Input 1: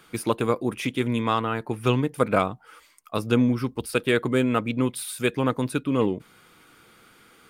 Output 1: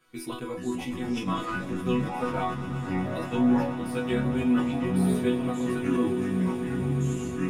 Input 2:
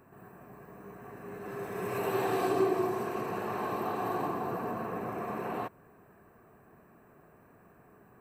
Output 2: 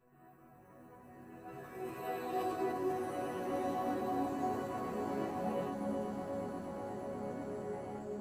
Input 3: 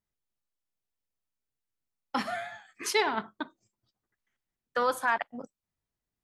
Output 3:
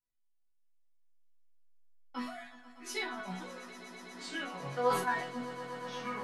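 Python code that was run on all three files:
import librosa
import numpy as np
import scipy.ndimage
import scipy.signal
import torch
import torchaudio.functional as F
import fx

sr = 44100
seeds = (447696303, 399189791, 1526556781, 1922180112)

p1 = fx.peak_eq(x, sr, hz=140.0, db=12.5, octaves=0.48)
p2 = fx.level_steps(p1, sr, step_db=13)
p3 = p1 + (p2 * librosa.db_to_amplitude(-2.5))
p4 = fx.chorus_voices(p3, sr, voices=6, hz=0.35, base_ms=14, depth_ms=2.2, mix_pct=50)
p5 = fx.resonator_bank(p4, sr, root=59, chord='sus4', decay_s=0.27)
p6 = fx.echo_pitch(p5, sr, ms=387, semitones=-5, count=2, db_per_echo=-3.0)
p7 = fx.echo_swell(p6, sr, ms=122, loudest=8, wet_db=-17.0)
p8 = fx.sustainer(p7, sr, db_per_s=74.0)
y = p8 * librosa.db_to_amplitude(7.5)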